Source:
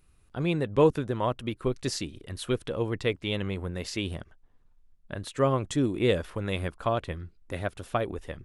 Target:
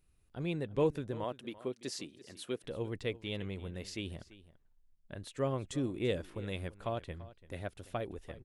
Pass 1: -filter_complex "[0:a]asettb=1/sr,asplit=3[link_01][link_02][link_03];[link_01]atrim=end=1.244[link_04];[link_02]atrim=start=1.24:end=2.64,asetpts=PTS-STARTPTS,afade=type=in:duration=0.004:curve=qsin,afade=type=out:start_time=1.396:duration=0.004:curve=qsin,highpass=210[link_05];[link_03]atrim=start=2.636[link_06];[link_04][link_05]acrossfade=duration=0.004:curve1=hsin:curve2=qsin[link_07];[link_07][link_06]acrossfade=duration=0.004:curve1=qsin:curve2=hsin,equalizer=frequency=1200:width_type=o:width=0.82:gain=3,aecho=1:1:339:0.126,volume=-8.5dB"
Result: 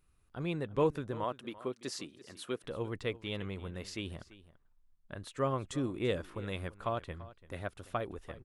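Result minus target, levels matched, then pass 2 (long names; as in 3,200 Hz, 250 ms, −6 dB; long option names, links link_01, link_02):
1,000 Hz band +4.0 dB
-filter_complex "[0:a]asettb=1/sr,asplit=3[link_01][link_02][link_03];[link_01]atrim=end=1.244[link_04];[link_02]atrim=start=1.24:end=2.64,asetpts=PTS-STARTPTS,afade=type=in:duration=0.004:curve=qsin,afade=type=out:start_time=1.396:duration=0.004:curve=qsin,highpass=210[link_05];[link_03]atrim=start=2.636[link_06];[link_04][link_05]acrossfade=duration=0.004:curve1=hsin:curve2=qsin[link_07];[link_07][link_06]acrossfade=duration=0.004:curve1=qsin:curve2=hsin,equalizer=frequency=1200:width_type=o:width=0.82:gain=-5,aecho=1:1:339:0.126,volume=-8.5dB"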